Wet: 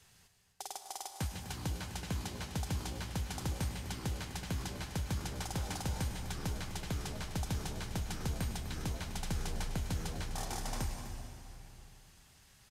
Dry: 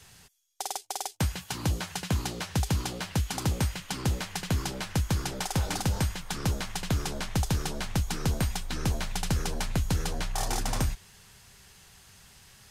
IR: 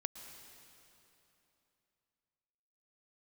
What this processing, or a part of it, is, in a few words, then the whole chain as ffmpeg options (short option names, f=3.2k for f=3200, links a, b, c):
cave: -filter_complex "[0:a]aecho=1:1:251:0.266[a];[1:a]atrim=start_sample=2205[b];[a][b]afir=irnorm=-1:irlink=0,volume=-7.5dB"